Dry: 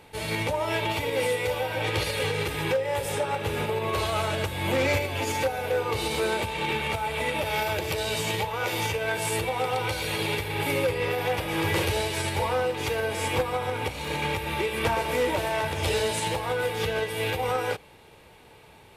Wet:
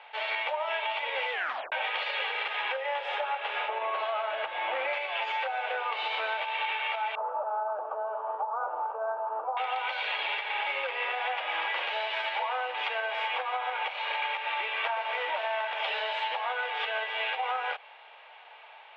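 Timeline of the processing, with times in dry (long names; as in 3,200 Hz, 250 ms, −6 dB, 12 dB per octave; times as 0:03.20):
0:01.32: tape stop 0.40 s
0:03.68–0:04.93: RIAA equalisation playback
0:07.15–0:09.57: elliptic low-pass filter 1,300 Hz
whole clip: elliptic band-pass filter 670–3,200 Hz, stop band 60 dB; downward compressor, threshold −33 dBFS; level +5 dB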